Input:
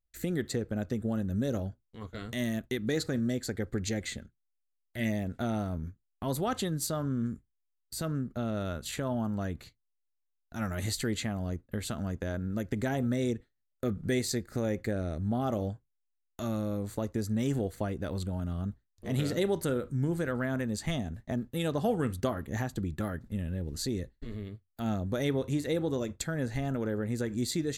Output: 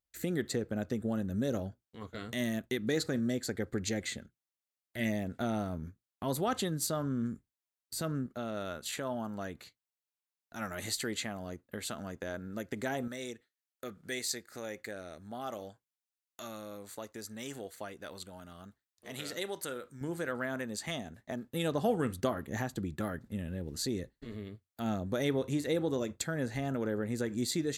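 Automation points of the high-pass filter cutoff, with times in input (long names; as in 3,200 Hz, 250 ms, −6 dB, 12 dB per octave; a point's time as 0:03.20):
high-pass filter 6 dB per octave
160 Hz
from 0:08.26 450 Hz
from 0:13.08 1,300 Hz
from 0:20.01 490 Hz
from 0:21.53 170 Hz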